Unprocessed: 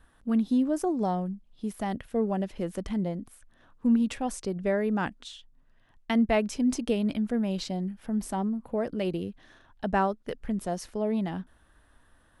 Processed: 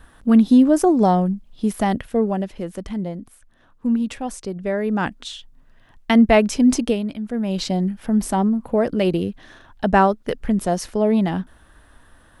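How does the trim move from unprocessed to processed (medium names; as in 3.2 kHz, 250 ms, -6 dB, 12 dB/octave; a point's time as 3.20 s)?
1.81 s +12 dB
2.64 s +3 dB
4.68 s +3 dB
5.31 s +10.5 dB
6.81 s +10.5 dB
7.14 s -1.5 dB
7.69 s +10.5 dB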